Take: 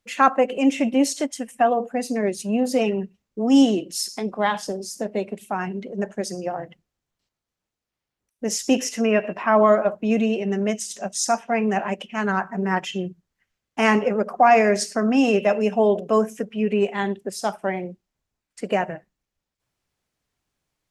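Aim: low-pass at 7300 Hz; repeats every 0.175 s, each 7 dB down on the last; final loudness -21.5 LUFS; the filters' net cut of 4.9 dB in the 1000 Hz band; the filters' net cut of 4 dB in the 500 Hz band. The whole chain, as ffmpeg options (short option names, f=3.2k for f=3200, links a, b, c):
-af "lowpass=7.3k,equalizer=f=500:t=o:g=-3.5,equalizer=f=1k:t=o:g=-5.5,aecho=1:1:175|350|525|700|875:0.447|0.201|0.0905|0.0407|0.0183,volume=2dB"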